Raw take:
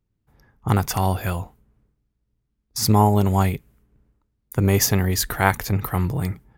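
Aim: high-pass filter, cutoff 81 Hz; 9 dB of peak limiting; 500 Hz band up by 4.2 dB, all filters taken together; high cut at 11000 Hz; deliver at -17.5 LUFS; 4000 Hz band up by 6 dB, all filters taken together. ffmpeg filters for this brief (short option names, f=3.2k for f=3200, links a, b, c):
-af "highpass=81,lowpass=11k,equalizer=f=500:t=o:g=5.5,equalizer=f=4k:t=o:g=8,volume=4dB,alimiter=limit=-3dB:level=0:latency=1"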